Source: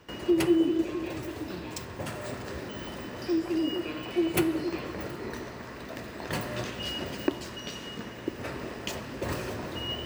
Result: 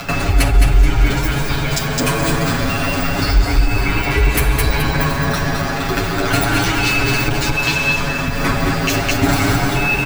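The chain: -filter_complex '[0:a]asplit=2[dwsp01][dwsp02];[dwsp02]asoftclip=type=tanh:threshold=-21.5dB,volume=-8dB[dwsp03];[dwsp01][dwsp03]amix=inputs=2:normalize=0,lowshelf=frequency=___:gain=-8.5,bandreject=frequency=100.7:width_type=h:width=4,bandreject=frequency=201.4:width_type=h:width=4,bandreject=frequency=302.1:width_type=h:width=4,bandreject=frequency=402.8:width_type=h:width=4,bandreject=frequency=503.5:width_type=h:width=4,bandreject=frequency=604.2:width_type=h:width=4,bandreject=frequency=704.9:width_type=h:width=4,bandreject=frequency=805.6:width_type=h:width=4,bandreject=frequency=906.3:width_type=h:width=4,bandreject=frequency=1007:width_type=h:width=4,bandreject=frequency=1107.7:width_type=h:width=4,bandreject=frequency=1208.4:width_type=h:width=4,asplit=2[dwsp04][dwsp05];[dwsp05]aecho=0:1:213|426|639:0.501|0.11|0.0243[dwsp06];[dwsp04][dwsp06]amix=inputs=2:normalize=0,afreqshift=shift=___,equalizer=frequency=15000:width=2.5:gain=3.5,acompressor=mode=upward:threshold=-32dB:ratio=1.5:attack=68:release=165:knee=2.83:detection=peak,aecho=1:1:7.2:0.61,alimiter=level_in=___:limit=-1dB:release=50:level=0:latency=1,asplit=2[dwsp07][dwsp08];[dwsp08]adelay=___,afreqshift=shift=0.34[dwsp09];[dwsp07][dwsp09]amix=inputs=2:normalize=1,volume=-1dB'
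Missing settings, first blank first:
160, -280, 20dB, 8.3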